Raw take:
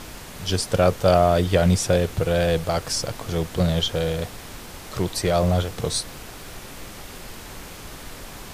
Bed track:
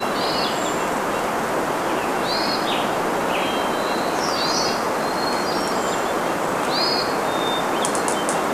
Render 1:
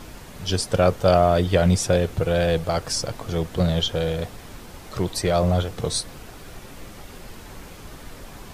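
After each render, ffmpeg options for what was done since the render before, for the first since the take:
-af "afftdn=nr=6:nf=-40"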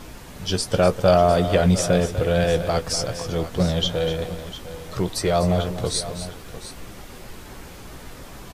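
-filter_complex "[0:a]asplit=2[s0][s1];[s1]adelay=16,volume=0.299[s2];[s0][s2]amix=inputs=2:normalize=0,asplit=2[s3][s4];[s4]aecho=0:1:247|703:0.266|0.2[s5];[s3][s5]amix=inputs=2:normalize=0"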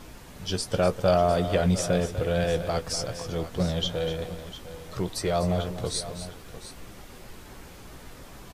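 -af "volume=0.531"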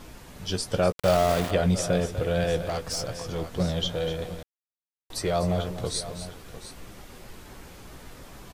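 -filter_complex "[0:a]asettb=1/sr,asplit=3[s0][s1][s2];[s0]atrim=end=0.924[s3];[s1]atrim=start=0.92:end=1.51,asetpts=PTS-STARTPTS,afade=t=in:d=0.004:c=qsin,afade=t=out:st=0.586:d=0.004:c=qsin,aeval=exprs='val(0)*gte(abs(val(0)),0.0501)':c=same[s4];[s2]atrim=start=1.506[s5];[s3][s4]acrossfade=d=0.004:c1=hsin:c2=qsin[s6];[s6][s5]acrossfade=d=0.004:c1=qsin:c2=hsin,asettb=1/sr,asplit=3[s7][s8][s9];[s7]atrim=end=2.694[s10];[s8]atrim=start=2.69:end=3.41,asetpts=PTS-STARTPTS,afade=t=in:d=0.004:c=qsin,afade=t=out:st=0.716:d=0.004:c=qsin,asoftclip=type=hard:threshold=0.0562[s11];[s9]atrim=start=3.406[s12];[s10][s11]acrossfade=d=0.004:c1=hsin:c2=qsin[s13];[s13][s12]acrossfade=d=0.004:c1=qsin:c2=hsin,asplit=3[s14][s15][s16];[s14]atrim=end=4.43,asetpts=PTS-STARTPTS,afade=t=out:st=4.426:d=0.004:c=hsin[s17];[s15]atrim=start=4.43:end=5.1,asetpts=PTS-STARTPTS,volume=0[s18];[s16]atrim=start=5.1,asetpts=PTS-STARTPTS,afade=t=in:d=0.004:c=hsin[s19];[s17][s18][s19]concat=n=3:v=0:a=1"

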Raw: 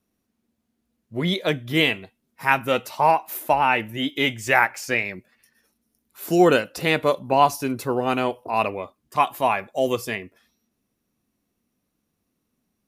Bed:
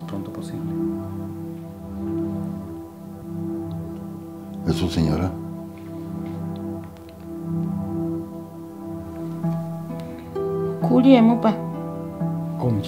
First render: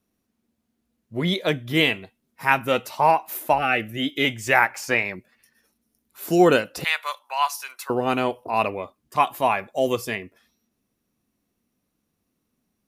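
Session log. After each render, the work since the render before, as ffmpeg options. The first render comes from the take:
-filter_complex "[0:a]asettb=1/sr,asplit=3[s0][s1][s2];[s0]atrim=end=3.584[s3];[s1]atrim=start=3.58:end=4.25,asetpts=PTS-STARTPTS,afade=t=in:d=0.004:c=qsin,afade=t=out:st=0.666:d=0.004:c=qsin,asuperstop=centerf=970:order=12:qfactor=3.1[s4];[s2]atrim=start=4.246[s5];[s3][s4]acrossfade=d=0.004:c1=hsin:c2=qsin[s6];[s6][s5]acrossfade=d=0.004:c1=qsin:c2=hsin,asettb=1/sr,asplit=3[s7][s8][s9];[s7]atrim=end=4.754[s10];[s8]atrim=start=4.75:end=5.16,asetpts=PTS-STARTPTS,afade=t=in:d=0.004:c=qsin,afade=t=out:st=0.406:d=0.004:c=qsin,equalizer=f=970:t=o:w=1:g=8[s11];[s9]atrim=start=5.156[s12];[s10][s11]acrossfade=d=0.004:c1=hsin:c2=qsin[s13];[s13][s12]acrossfade=d=0.004:c1=qsin:c2=hsin,asettb=1/sr,asplit=3[s14][s15][s16];[s14]atrim=end=6.844[s17];[s15]atrim=start=6.84:end=7.9,asetpts=PTS-STARTPTS,afade=t=in:d=0.004:c=qsin,afade=t=out:st=1.056:d=0.004:c=qsin,highpass=f=1000:w=0.5412,highpass=f=1000:w=1.3066[s18];[s16]atrim=start=7.896[s19];[s17][s18]acrossfade=d=0.004:c1=hsin:c2=qsin[s20];[s20][s19]acrossfade=d=0.004:c1=qsin:c2=hsin"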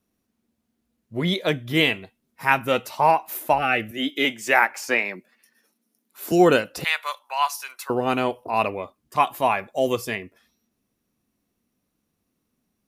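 -filter_complex "[0:a]asettb=1/sr,asplit=3[s0][s1][s2];[s0]atrim=end=3.914[s3];[s1]atrim=start=3.91:end=6.32,asetpts=PTS-STARTPTS,afade=t=in:d=0.004:c=qsin,afade=t=out:st=2.406:d=0.004:c=qsin,highpass=f=190:w=0.5412,highpass=f=190:w=1.3066[s4];[s2]atrim=start=6.316[s5];[s3][s4]acrossfade=d=0.004:c1=hsin:c2=qsin[s6];[s6][s5]acrossfade=d=0.004:c1=qsin:c2=hsin"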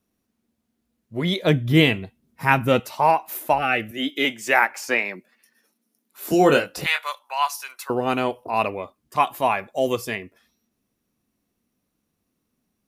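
-filter_complex "[0:a]asettb=1/sr,asplit=3[s0][s1][s2];[s0]atrim=end=1.424[s3];[s1]atrim=start=1.42:end=2.8,asetpts=PTS-STARTPTS,afade=t=in:d=0.004:c=qsin,afade=t=out:st=1.376:d=0.004:c=qsin,equalizer=f=86:w=0.31:g=11.5[s4];[s2]atrim=start=2.796[s5];[s3][s4]acrossfade=d=0.004:c1=hsin:c2=qsin[s6];[s6][s5]acrossfade=d=0.004:c1=qsin:c2=hsin,asettb=1/sr,asplit=3[s7][s8][s9];[s7]atrim=end=6.234[s10];[s8]atrim=start=6.23:end=7.06,asetpts=PTS-STARTPTS,afade=t=in:d=0.004:c=qsin,afade=t=out:st=0.826:d=0.004:c=qsin,asplit=2[s11][s12];[s12]adelay=21,volume=0.562[s13];[s11][s13]amix=inputs=2:normalize=0,atrim=end_sample=36603[s14];[s9]atrim=start=7.056[s15];[s10][s14]acrossfade=d=0.004:c1=hsin:c2=qsin[s16];[s16][s15]acrossfade=d=0.004:c1=qsin:c2=hsin"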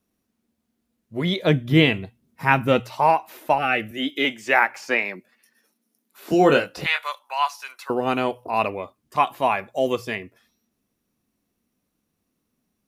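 -filter_complex "[0:a]bandreject=f=60:t=h:w=6,bandreject=f=120:t=h:w=6,acrossover=split=5200[s0][s1];[s1]acompressor=threshold=0.00398:ratio=4:attack=1:release=60[s2];[s0][s2]amix=inputs=2:normalize=0"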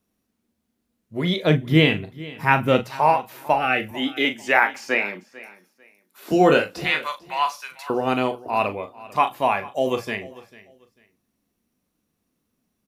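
-filter_complex "[0:a]asplit=2[s0][s1];[s1]adelay=39,volume=0.316[s2];[s0][s2]amix=inputs=2:normalize=0,aecho=1:1:445|890:0.106|0.0254"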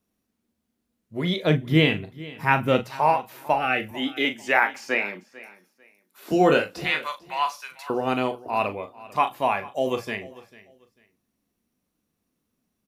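-af "volume=0.75"

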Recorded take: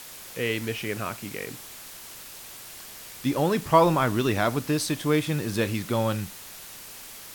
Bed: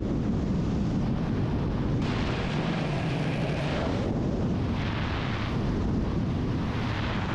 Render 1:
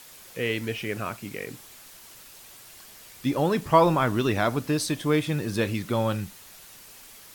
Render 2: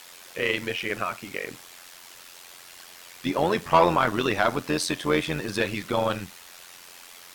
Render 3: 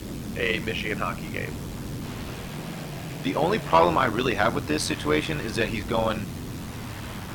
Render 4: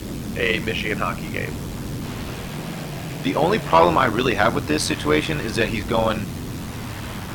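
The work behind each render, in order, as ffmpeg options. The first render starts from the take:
-af "afftdn=nr=6:nf=-43"
-filter_complex "[0:a]asplit=2[s0][s1];[s1]highpass=f=720:p=1,volume=5.01,asoftclip=type=tanh:threshold=0.562[s2];[s0][s2]amix=inputs=2:normalize=0,lowpass=f=4500:p=1,volume=0.501,tremolo=f=88:d=0.71"
-filter_complex "[1:a]volume=0.447[s0];[0:a][s0]amix=inputs=2:normalize=0"
-af "volume=1.68,alimiter=limit=0.708:level=0:latency=1"

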